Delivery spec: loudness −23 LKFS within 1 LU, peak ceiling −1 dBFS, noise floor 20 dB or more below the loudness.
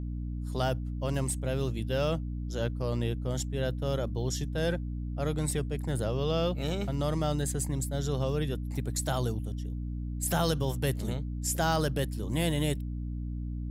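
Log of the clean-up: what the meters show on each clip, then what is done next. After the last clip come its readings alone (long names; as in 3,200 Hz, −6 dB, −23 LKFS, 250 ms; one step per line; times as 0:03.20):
mains hum 60 Hz; hum harmonics up to 300 Hz; level of the hum −32 dBFS; integrated loudness −31.5 LKFS; sample peak −15.0 dBFS; target loudness −23.0 LKFS
→ hum removal 60 Hz, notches 5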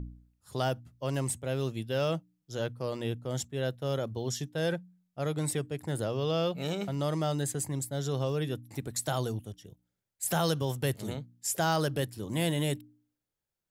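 mains hum none found; integrated loudness −32.5 LKFS; sample peak −16.0 dBFS; target loudness −23.0 LKFS
→ level +9.5 dB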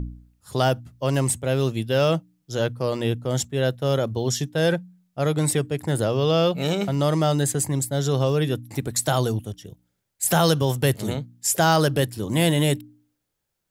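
integrated loudness −23.0 LKFS; sample peak −6.5 dBFS; background noise floor −78 dBFS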